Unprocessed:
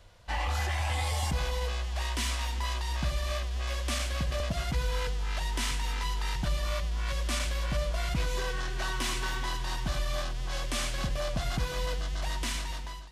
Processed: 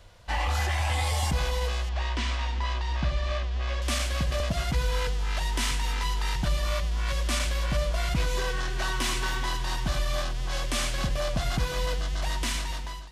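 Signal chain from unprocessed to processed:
0:01.89–0:03.82: high-frequency loss of the air 140 metres
level +3.5 dB

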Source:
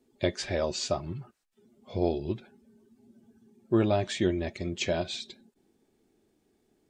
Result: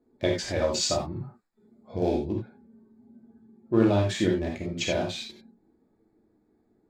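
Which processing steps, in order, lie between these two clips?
adaptive Wiener filter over 15 samples
0:00.67–0:02.16: high-shelf EQ 3,700 Hz +7 dB
convolution reverb, pre-delay 3 ms, DRR −1.5 dB

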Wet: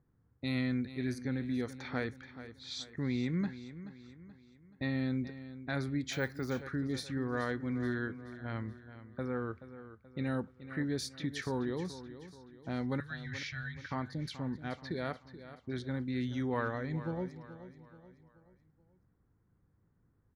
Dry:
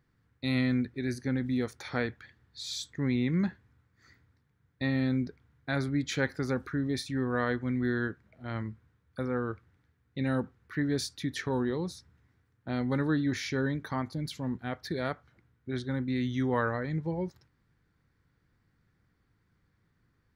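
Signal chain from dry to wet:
0:13.00–0:13.91: elliptic band-stop filter 120–1,500 Hz
low-pass that shuts in the quiet parts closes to 890 Hz, open at −29 dBFS
in parallel at +1 dB: downward compressor, threshold −40 dBFS, peak gain reduction 16 dB
on the sum: repeating echo 429 ms, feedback 44%, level −13.5 dB
0:06.13–0:06.62: bad sample-rate conversion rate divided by 2×, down none, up hold
level −7 dB

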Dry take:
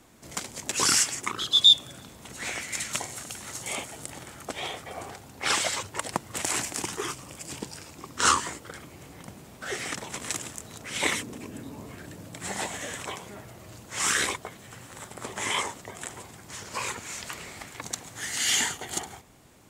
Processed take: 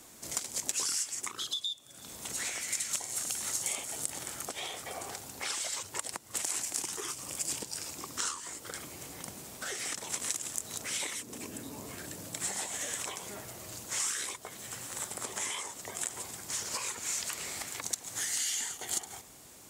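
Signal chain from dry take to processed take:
downward compressor 16 to 1, threshold −37 dBFS, peak gain reduction 26 dB
bass and treble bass −5 dB, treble +10 dB

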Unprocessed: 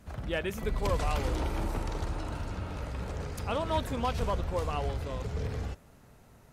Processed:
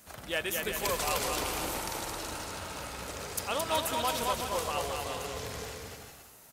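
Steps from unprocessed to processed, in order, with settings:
RIAA equalisation recording
bouncing-ball delay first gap 220 ms, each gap 0.7×, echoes 5

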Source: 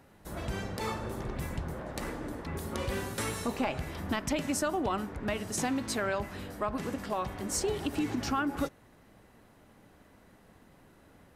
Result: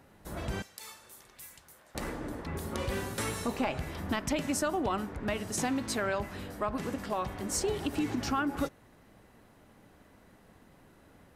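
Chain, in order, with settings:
0:00.62–0:01.95: first-order pre-emphasis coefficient 0.97

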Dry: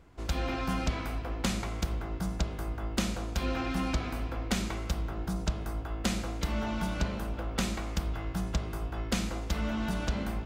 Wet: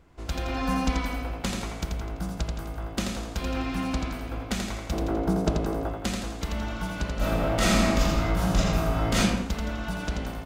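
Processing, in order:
0:00.55–0:01.22: comb filter 4 ms, depth 94%
0:04.92–0:05.89: parametric band 400 Hz +14.5 dB 2.4 octaves
repeating echo 84 ms, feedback 48%, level −4.5 dB
0:07.16–0:09.19: thrown reverb, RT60 0.98 s, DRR −10 dB

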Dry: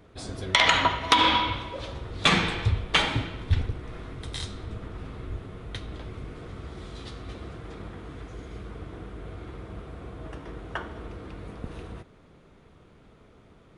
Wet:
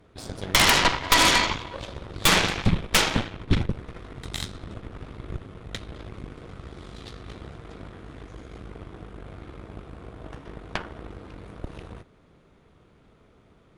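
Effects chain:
harmonic generator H 8 −7 dB, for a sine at −6.5 dBFS
0:03.04–0:03.72: one half of a high-frequency compander decoder only
level −2.5 dB

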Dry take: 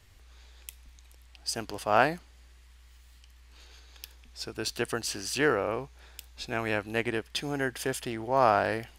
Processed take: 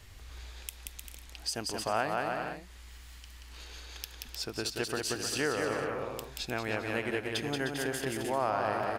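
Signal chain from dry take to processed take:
bouncing-ball delay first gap 180 ms, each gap 0.7×, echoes 5
downward compressor 2 to 1, threshold −44 dBFS, peak gain reduction 15 dB
level +6 dB

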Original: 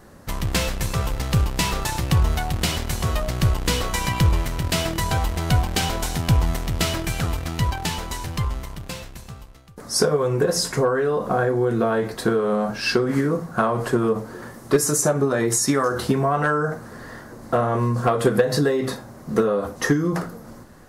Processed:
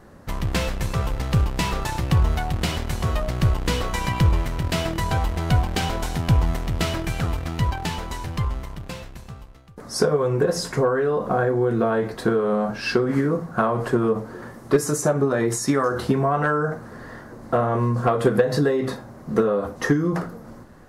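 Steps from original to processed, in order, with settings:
high-shelf EQ 3,800 Hz −8.5 dB

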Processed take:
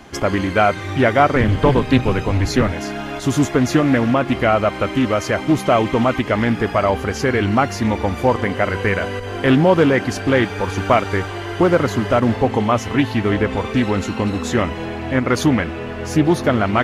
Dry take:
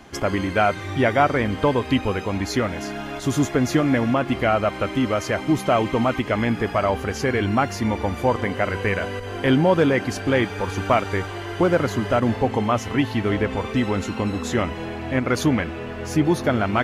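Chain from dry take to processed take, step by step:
0:01.35–0:02.72: sub-octave generator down 1 octave, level +2 dB
highs frequency-modulated by the lows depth 0.21 ms
level +4 dB

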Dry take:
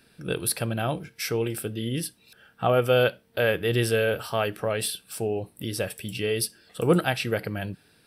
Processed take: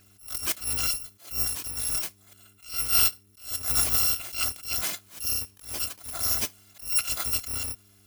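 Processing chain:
samples in bit-reversed order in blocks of 256 samples
hum with harmonics 100 Hz, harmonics 4, −62 dBFS −6 dB per octave
level that may rise only so fast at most 150 dB per second

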